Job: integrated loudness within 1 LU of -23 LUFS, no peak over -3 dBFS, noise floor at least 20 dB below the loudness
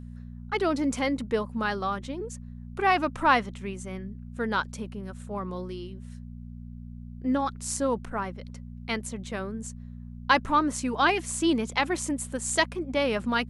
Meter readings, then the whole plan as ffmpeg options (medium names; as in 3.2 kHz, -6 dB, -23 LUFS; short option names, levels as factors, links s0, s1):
hum 60 Hz; highest harmonic 240 Hz; hum level -38 dBFS; loudness -28.0 LUFS; peak level -6.5 dBFS; loudness target -23.0 LUFS
-> -af "bandreject=f=60:t=h:w=4,bandreject=f=120:t=h:w=4,bandreject=f=180:t=h:w=4,bandreject=f=240:t=h:w=4"
-af "volume=1.78,alimiter=limit=0.708:level=0:latency=1"